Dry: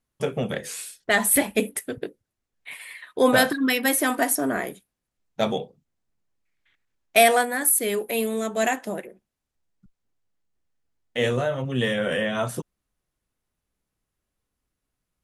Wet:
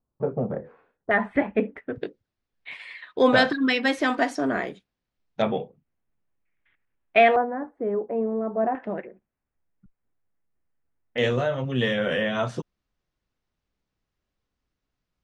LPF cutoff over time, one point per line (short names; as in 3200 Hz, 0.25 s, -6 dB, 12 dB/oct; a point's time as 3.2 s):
LPF 24 dB/oct
1100 Hz
from 1.11 s 2000 Hz
from 1.96 s 5200 Hz
from 5.42 s 2700 Hz
from 7.36 s 1100 Hz
from 8.75 s 2300 Hz
from 11.18 s 5800 Hz